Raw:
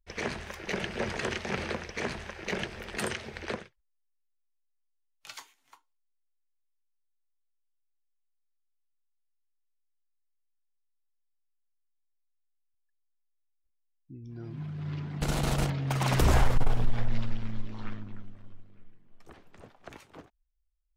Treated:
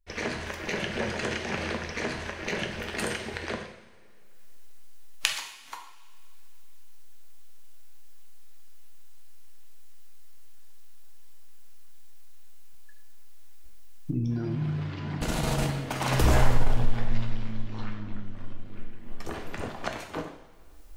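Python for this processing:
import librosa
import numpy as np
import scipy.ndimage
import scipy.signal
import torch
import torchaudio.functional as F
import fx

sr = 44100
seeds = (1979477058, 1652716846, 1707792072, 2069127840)

y = fx.recorder_agc(x, sr, target_db=-24.0, rise_db_per_s=34.0, max_gain_db=30)
y = fx.rev_double_slope(y, sr, seeds[0], early_s=0.73, late_s=2.7, knee_db=-18, drr_db=3.0)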